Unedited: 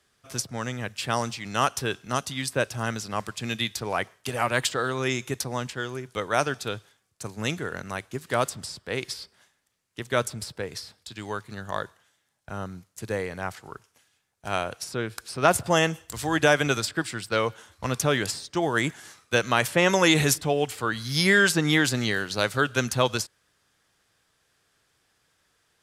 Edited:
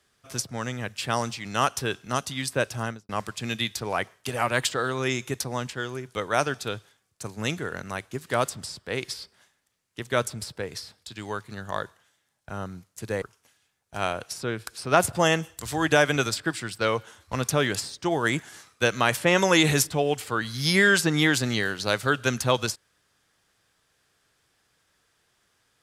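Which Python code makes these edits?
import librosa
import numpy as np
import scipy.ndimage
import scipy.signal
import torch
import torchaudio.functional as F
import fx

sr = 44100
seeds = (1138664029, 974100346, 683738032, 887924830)

y = fx.studio_fade_out(x, sr, start_s=2.79, length_s=0.3)
y = fx.edit(y, sr, fx.cut(start_s=13.22, length_s=0.51), tone=tone)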